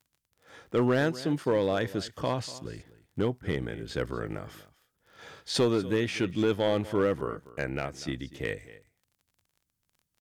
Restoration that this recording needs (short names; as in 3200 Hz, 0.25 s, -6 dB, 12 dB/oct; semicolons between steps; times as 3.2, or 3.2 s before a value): clip repair -18 dBFS; de-click; inverse comb 0.243 s -18 dB